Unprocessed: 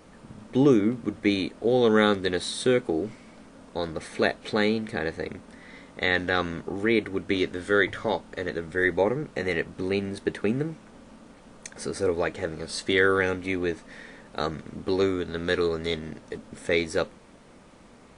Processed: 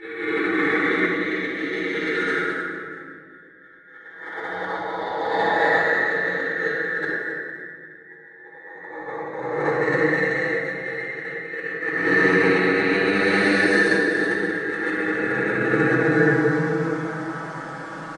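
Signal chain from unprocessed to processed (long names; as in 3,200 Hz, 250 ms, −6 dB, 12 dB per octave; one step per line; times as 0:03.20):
peak hold with a rise ahead of every peak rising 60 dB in 0.56 s
high-pass filter 1,400 Hz 6 dB per octave
high shelf with overshoot 2,100 Hz −6.5 dB, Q 3
comb filter 6.2 ms, depth 80%
extreme stretch with random phases 4.4×, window 0.50 s, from 0:06.99
compressor whose output falls as the input rises −37 dBFS, ratio −0.5
high-frequency loss of the air 57 metres
rectangular room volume 2,900 cubic metres, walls mixed, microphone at 4.2 metres
level +6 dB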